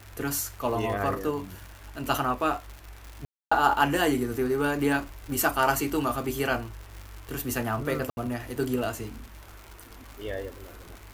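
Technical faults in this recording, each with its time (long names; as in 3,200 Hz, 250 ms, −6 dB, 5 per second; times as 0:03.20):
surface crackle 150 per second −35 dBFS
0:03.25–0:03.52: drop-out 265 ms
0:08.10–0:08.17: drop-out 71 ms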